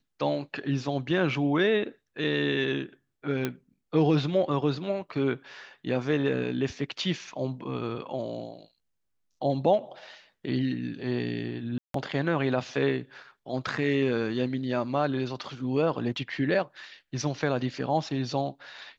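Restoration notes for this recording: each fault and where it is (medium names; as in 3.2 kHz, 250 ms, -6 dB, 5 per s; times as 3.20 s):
3.45 s: pop -14 dBFS
11.78–11.94 s: dropout 163 ms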